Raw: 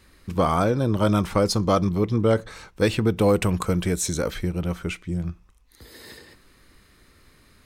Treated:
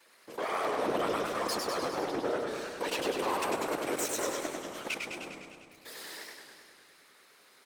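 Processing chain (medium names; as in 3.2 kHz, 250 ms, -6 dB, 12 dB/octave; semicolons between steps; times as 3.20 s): comb filter that takes the minimum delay 8.8 ms; high-pass 390 Hz 24 dB/octave; level held to a coarse grid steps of 17 dB; peak limiter -29.5 dBFS, peak gain reduction 11 dB; whisper effect; frequency-shifting echo 119 ms, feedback 56%, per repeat -51 Hz, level -13 dB; modulated delay 101 ms, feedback 69%, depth 125 cents, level -4 dB; trim +5 dB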